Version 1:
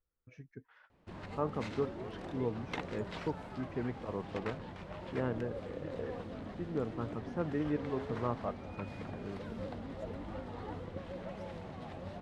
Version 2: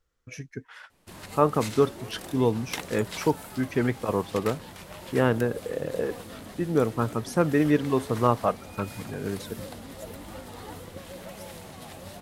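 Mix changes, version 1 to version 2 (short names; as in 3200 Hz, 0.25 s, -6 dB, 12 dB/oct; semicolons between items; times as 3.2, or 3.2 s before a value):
speech +11.5 dB; master: remove tape spacing loss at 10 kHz 31 dB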